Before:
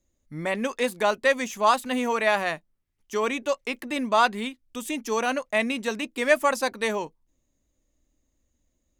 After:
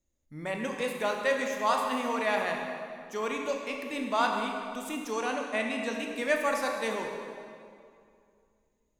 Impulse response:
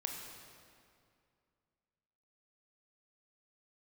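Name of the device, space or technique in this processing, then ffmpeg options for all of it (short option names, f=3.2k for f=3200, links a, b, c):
stairwell: -filter_complex "[1:a]atrim=start_sample=2205[a];[0:a][a]afir=irnorm=-1:irlink=0,asettb=1/sr,asplit=3[b][c][d];[b]atrim=end=5.124[e];[c]atrim=start=5.12:end=5.93,asetpts=PTS-STARTPTS,afade=t=in:d=0.004:c=qsin,afade=t=out:st=0.806:d=0.004:c=qsin,lowpass=f=11k:w=0.5412,lowpass=f=11k:w=1.3066[f];[d]atrim=start=5.926[g];[e][f]acrossfade=d=0.004:c1=hsin:c2=qsin[h];[h][g]acrossfade=d=0.004:c1=qsin:c2=hsin,volume=-5.5dB"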